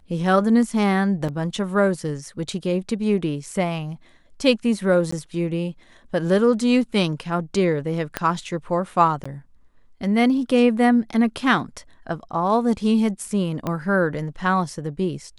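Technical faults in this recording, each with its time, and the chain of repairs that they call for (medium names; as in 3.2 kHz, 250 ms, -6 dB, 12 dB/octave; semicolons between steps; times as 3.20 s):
1.28–1.29 s: dropout 5.8 ms
5.11–5.12 s: dropout 14 ms
8.17 s: pop -8 dBFS
9.24–9.26 s: dropout 15 ms
13.67 s: pop -13 dBFS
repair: de-click; interpolate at 1.28 s, 5.8 ms; interpolate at 5.11 s, 14 ms; interpolate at 9.24 s, 15 ms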